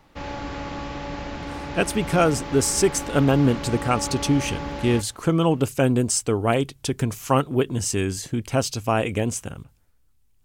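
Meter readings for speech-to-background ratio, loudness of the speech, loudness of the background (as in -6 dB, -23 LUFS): 10.0 dB, -22.5 LUFS, -32.5 LUFS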